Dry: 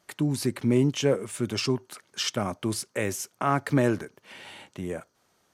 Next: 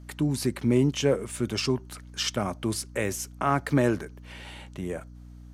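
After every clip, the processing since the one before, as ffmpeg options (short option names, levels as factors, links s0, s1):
-af "aeval=exprs='val(0)+0.00631*(sin(2*PI*60*n/s)+sin(2*PI*2*60*n/s)/2+sin(2*PI*3*60*n/s)/3+sin(2*PI*4*60*n/s)/4+sin(2*PI*5*60*n/s)/5)':c=same"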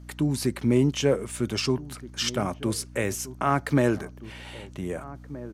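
-filter_complex "[0:a]asplit=2[s0][s1];[s1]adelay=1574,volume=0.158,highshelf=f=4000:g=-35.4[s2];[s0][s2]amix=inputs=2:normalize=0,volume=1.12"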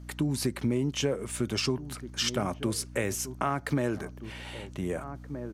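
-af "acompressor=threshold=0.0631:ratio=6"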